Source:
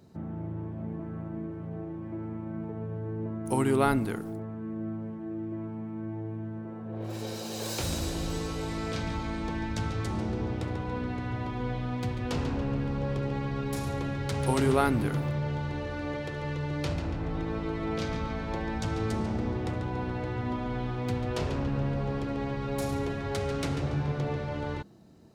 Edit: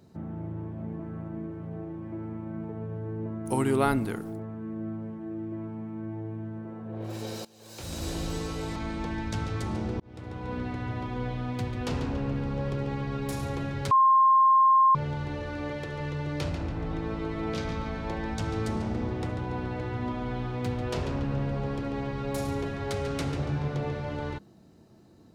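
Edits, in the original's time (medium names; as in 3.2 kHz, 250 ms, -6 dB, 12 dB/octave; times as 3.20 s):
7.45–8.11 s: fade in quadratic, from -21.5 dB
8.76–9.20 s: delete
10.44–11.02 s: fade in
14.35–15.39 s: bleep 1.06 kHz -16 dBFS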